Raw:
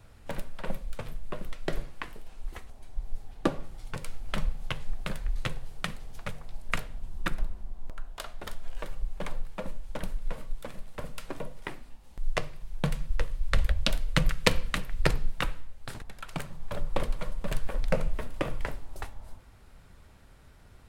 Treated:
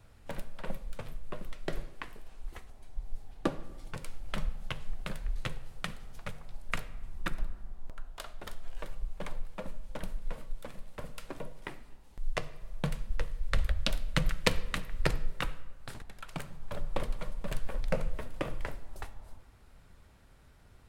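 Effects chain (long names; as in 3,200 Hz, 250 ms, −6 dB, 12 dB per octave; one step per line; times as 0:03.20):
comb and all-pass reverb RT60 1.8 s, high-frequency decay 0.4×, pre-delay 30 ms, DRR 19 dB
level −4 dB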